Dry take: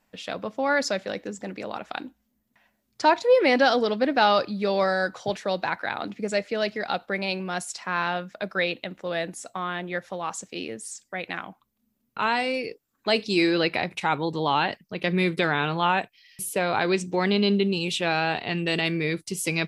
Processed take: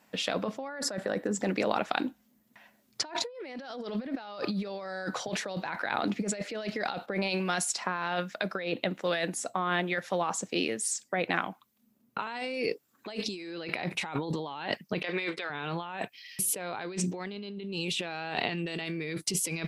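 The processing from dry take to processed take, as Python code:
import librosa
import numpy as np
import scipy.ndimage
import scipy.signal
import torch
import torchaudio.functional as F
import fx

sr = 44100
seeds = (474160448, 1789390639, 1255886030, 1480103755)

y = fx.spec_box(x, sr, start_s=0.68, length_s=0.66, low_hz=2000.0, high_hz=7300.0, gain_db=-9)
y = fx.harmonic_tremolo(y, sr, hz=1.2, depth_pct=50, crossover_hz=1300.0, at=(7.06, 12.27))
y = fx.bandpass_edges(y, sr, low_hz=590.0, high_hz=5500.0, at=(15.02, 15.5))
y = scipy.signal.sosfilt(scipy.signal.butter(2, 130.0, 'highpass', fs=sr, output='sos'), y)
y = fx.over_compress(y, sr, threshold_db=-34.0, ratio=-1.0)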